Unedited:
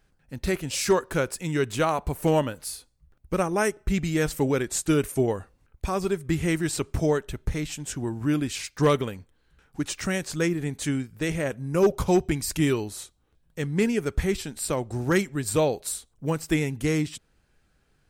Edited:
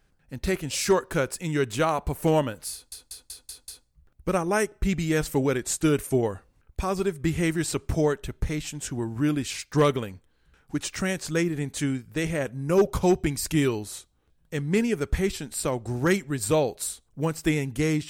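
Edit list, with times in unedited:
0:02.73: stutter 0.19 s, 6 plays

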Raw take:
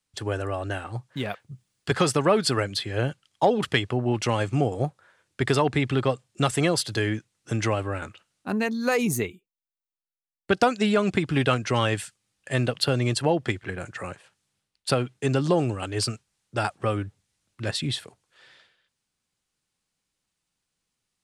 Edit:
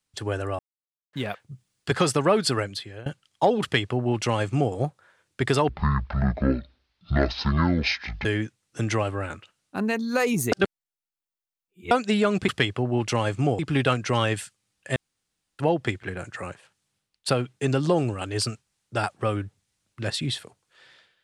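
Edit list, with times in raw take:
0:00.59–0:01.13: silence
0:02.51–0:03.06: fade out, to −21.5 dB
0:03.62–0:04.73: duplicate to 0:11.20
0:05.69–0:06.97: play speed 50%
0:09.24–0:10.63: reverse
0:12.57–0:13.20: fill with room tone

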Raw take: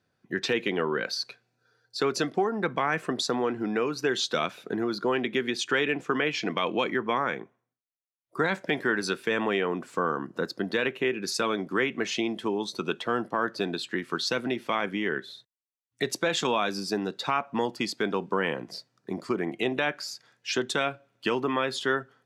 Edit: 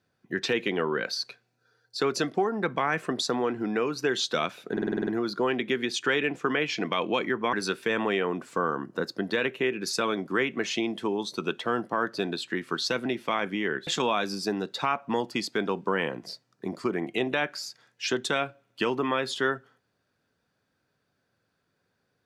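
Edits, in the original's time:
0:04.72: stutter 0.05 s, 8 plays
0:07.18–0:08.94: remove
0:15.28–0:16.32: remove

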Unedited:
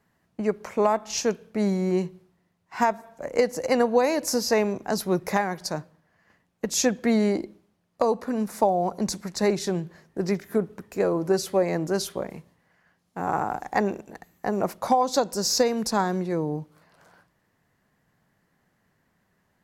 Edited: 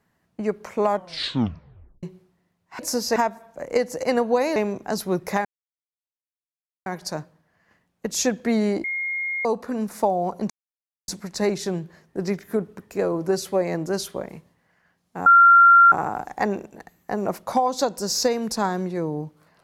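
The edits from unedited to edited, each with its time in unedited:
0:00.86: tape stop 1.17 s
0:04.19–0:04.56: move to 0:02.79
0:05.45: splice in silence 1.41 s
0:07.43–0:08.04: beep over 2,140 Hz −24 dBFS
0:09.09: splice in silence 0.58 s
0:13.27: insert tone 1,380 Hz −8.5 dBFS 0.66 s

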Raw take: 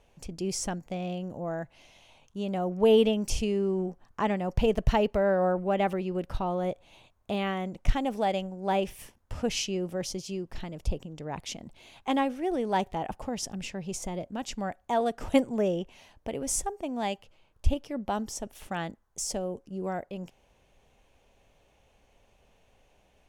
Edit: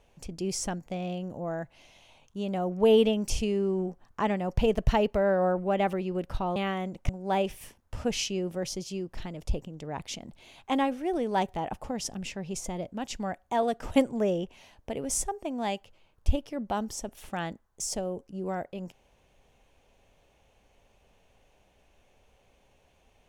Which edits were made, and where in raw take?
0:06.56–0:07.36: remove
0:07.89–0:08.47: remove

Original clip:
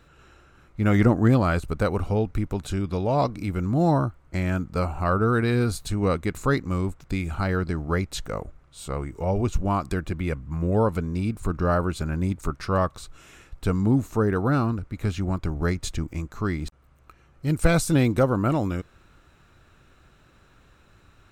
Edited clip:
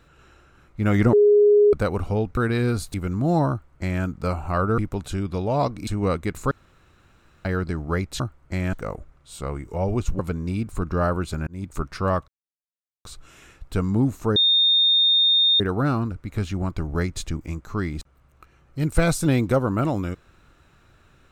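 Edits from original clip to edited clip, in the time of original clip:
0:01.13–0:01.73: beep over 414 Hz −11.5 dBFS
0:02.37–0:03.46: swap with 0:05.30–0:05.87
0:04.02–0:04.55: duplicate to 0:08.20
0:06.51–0:07.45: fill with room tone
0:09.66–0:10.87: remove
0:12.15–0:12.44: fade in
0:12.96: splice in silence 0.77 s
0:14.27: insert tone 3,660 Hz −14.5 dBFS 1.24 s

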